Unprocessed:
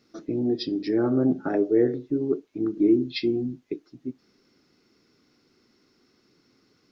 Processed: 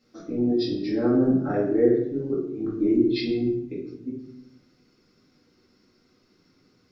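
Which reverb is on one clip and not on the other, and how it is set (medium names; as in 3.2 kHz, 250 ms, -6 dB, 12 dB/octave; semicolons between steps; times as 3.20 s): simulated room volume 160 m³, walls mixed, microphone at 2.1 m; trim -7 dB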